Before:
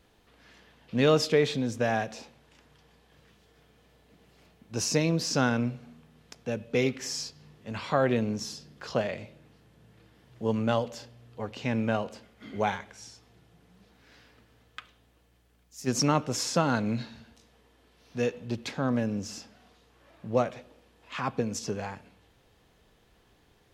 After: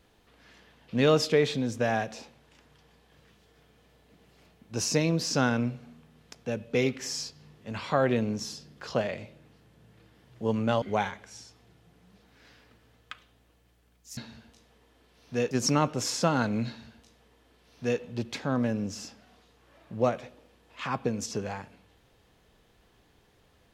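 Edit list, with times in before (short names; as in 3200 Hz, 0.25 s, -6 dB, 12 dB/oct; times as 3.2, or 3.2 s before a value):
10.82–12.49 cut
17–18.34 copy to 15.84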